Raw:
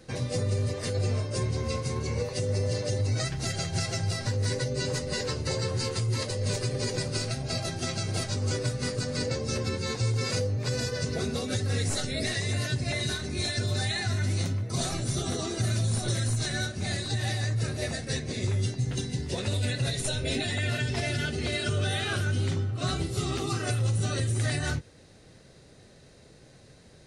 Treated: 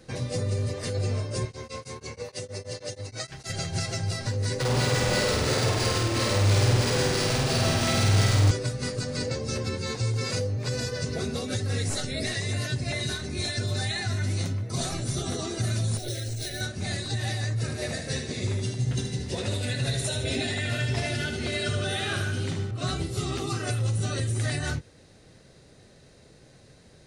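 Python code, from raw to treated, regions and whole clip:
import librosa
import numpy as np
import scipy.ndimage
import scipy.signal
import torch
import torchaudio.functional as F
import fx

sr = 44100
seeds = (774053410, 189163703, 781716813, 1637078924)

y = fx.chain(x, sr, fx.low_shelf(hz=330.0, db=-10.5),
    fx.tremolo_abs(hz=6.3), at=(1.45, 3.5))
y = fx.chain(y, sr, fx.quant_companded(bits=2),
    fx.room_flutter(wall_m=8.6, rt60_s=1.1),
    fx.resample_linear(factor=3), at=(4.6, 8.51))
y = fx.chain(y, sr, fx.fixed_phaser(hz=450.0, stages=4),
    fx.resample_bad(factor=3, down='filtered', up='hold'), at=(15.97, 16.61))
y = fx.chain(y, sr, fx.highpass(hz=42.0, slope=12),
    fx.echo_feedback(ms=76, feedback_pct=49, wet_db=-7.0), at=(17.62, 22.71))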